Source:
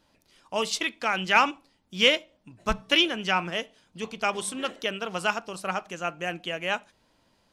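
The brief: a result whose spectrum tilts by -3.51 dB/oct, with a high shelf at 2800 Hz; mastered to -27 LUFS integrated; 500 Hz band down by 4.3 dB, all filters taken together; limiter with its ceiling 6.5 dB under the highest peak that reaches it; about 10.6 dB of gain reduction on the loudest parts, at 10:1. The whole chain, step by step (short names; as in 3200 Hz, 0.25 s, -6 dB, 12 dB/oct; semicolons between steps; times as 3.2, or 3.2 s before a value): bell 500 Hz -5 dB; high shelf 2800 Hz -7.5 dB; compressor 10:1, threshold -28 dBFS; gain +9.5 dB; limiter -14 dBFS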